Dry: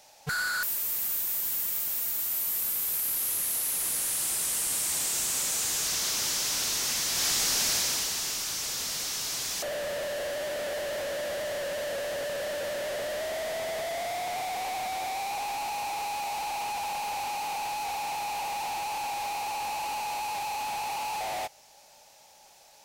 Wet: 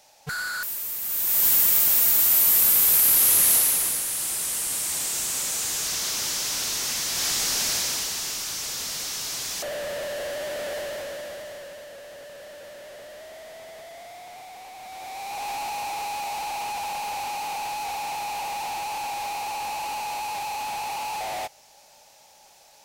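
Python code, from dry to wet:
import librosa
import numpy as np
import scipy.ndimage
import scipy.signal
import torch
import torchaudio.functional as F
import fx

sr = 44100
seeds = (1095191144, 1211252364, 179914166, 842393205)

y = fx.gain(x, sr, db=fx.line((1.01, -0.5), (1.45, 11.5), (3.54, 11.5), (4.05, 1.5), (10.77, 1.5), (11.9, -10.0), (14.74, -10.0), (15.49, 2.0)))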